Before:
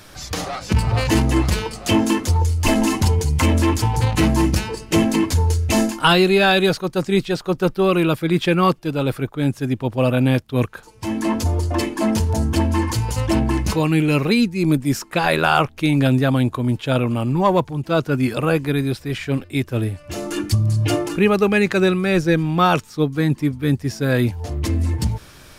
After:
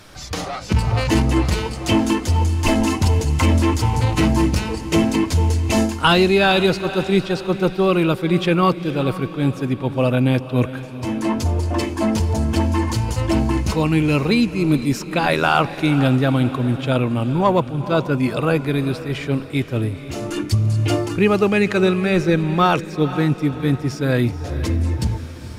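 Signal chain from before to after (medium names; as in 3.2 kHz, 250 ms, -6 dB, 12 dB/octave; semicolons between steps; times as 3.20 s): treble shelf 9.7 kHz -8 dB; band-stop 1.7 kHz, Q 25; on a send: echo that smears into a reverb 466 ms, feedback 48%, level -13 dB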